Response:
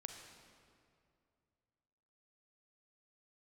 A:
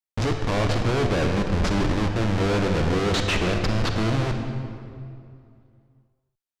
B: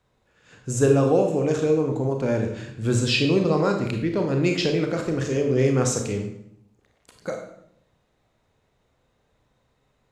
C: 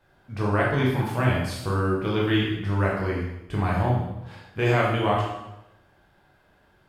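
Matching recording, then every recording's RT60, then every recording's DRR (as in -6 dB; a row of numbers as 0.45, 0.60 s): A; 2.4, 0.70, 0.90 s; 4.0, 3.5, -4.5 dB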